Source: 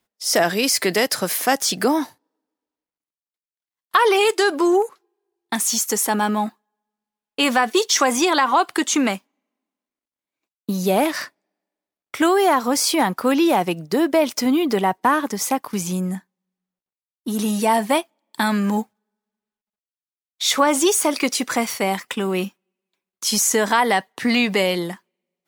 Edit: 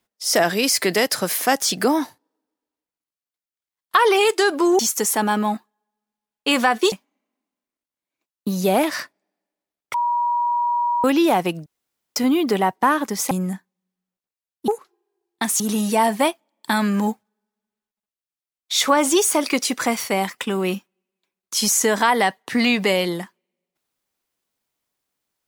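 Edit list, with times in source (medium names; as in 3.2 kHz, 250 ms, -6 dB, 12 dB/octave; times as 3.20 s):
4.79–5.71 s: move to 17.30 s
7.84–9.14 s: delete
12.16–13.26 s: bleep 959 Hz -17.5 dBFS
13.88–14.38 s: room tone
15.53–15.93 s: delete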